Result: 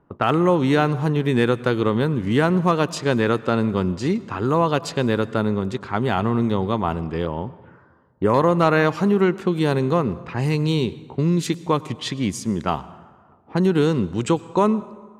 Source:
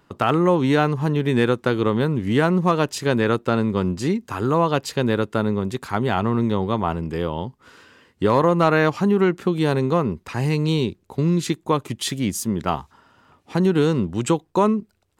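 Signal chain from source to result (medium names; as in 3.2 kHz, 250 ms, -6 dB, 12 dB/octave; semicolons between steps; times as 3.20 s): level-controlled noise filter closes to 970 Hz, open at -17.5 dBFS; 7.25–8.34 s: touch-sensitive phaser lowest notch 360 Hz, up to 4 kHz, full sweep at -25 dBFS; plate-style reverb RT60 1.6 s, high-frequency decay 0.6×, pre-delay 85 ms, DRR 18 dB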